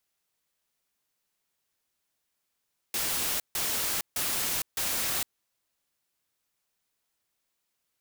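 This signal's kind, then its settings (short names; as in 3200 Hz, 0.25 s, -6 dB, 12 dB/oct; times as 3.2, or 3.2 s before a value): noise bursts white, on 0.46 s, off 0.15 s, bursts 4, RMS -29.5 dBFS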